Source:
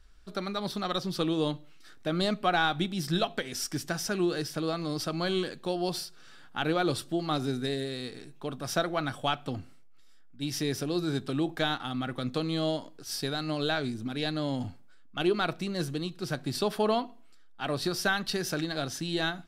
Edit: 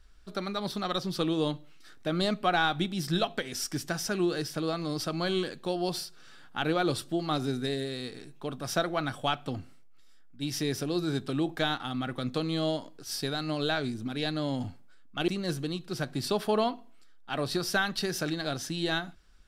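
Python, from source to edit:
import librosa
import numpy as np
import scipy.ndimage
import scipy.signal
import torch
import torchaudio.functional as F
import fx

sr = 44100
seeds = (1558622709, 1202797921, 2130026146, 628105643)

y = fx.edit(x, sr, fx.cut(start_s=15.28, length_s=0.31), tone=tone)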